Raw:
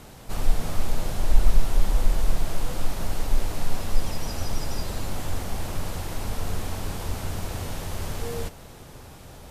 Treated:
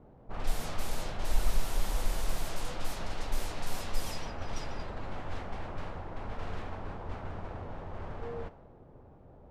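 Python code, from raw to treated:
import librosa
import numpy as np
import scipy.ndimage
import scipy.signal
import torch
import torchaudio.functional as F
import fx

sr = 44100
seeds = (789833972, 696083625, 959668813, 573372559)

y = fx.env_lowpass(x, sr, base_hz=510.0, full_db=-13.5)
y = fx.low_shelf(y, sr, hz=400.0, db=-8.0)
y = F.gain(torch.from_numpy(y), -2.5).numpy()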